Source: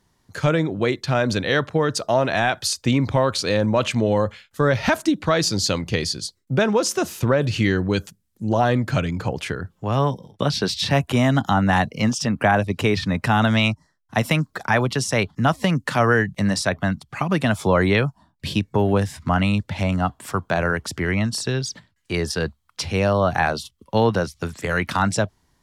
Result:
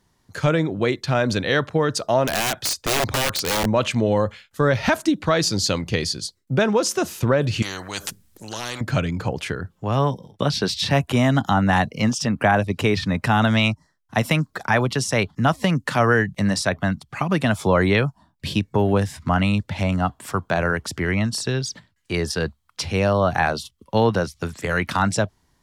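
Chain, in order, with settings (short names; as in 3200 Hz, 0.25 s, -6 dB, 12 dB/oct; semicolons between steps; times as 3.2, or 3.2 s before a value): 2.26–3.66 wrapped overs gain 15 dB; 7.62–8.81 spectral compressor 4:1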